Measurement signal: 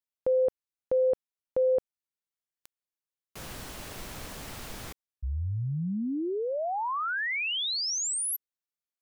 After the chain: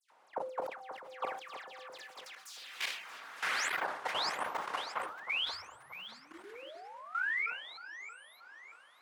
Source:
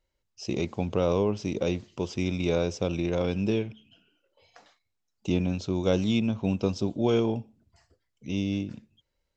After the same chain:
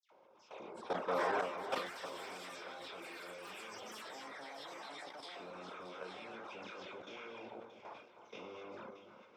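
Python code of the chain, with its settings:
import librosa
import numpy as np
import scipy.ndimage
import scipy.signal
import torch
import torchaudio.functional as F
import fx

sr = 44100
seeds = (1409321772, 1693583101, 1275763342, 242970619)

p1 = fx.bin_compress(x, sr, power=0.4)
p2 = fx.peak_eq(p1, sr, hz=4800.0, db=-3.0, octaves=1.6)
p3 = fx.filter_lfo_bandpass(p2, sr, shape='saw_up', hz=0.27, low_hz=850.0, high_hz=1900.0, q=2.2)
p4 = fx.room_shoebox(p3, sr, seeds[0], volume_m3=80.0, walls='mixed', distance_m=0.46)
p5 = fx.echo_pitch(p4, sr, ms=485, semitones=7, count=3, db_per_echo=-3.0)
p6 = fx.dereverb_blind(p5, sr, rt60_s=0.58)
p7 = fx.highpass(p6, sr, hz=200.0, slope=6)
p8 = fx.high_shelf(p7, sr, hz=3100.0, db=3.5)
p9 = fx.dispersion(p8, sr, late='lows', ms=116.0, hz=2400.0)
p10 = fx.level_steps(p9, sr, step_db=16)
p11 = p10 + fx.echo_alternate(p10, sr, ms=314, hz=1400.0, feedback_pct=67, wet_db=-9.5, dry=0)
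p12 = fx.sustainer(p11, sr, db_per_s=83.0)
y = F.gain(torch.from_numpy(p12), -1.5).numpy()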